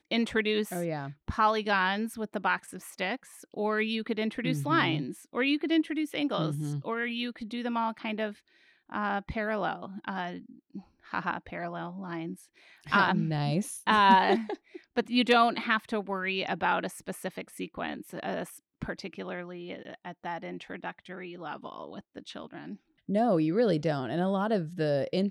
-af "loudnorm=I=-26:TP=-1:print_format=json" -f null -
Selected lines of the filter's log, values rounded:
"input_i" : "-29.6",
"input_tp" : "-10.3",
"input_lra" : "11.9",
"input_thresh" : "-40.3",